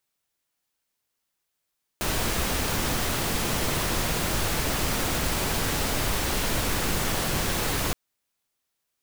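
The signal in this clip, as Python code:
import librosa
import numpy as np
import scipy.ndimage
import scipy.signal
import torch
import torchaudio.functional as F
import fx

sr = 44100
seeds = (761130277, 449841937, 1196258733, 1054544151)

y = fx.noise_colour(sr, seeds[0], length_s=5.92, colour='pink', level_db=-26.0)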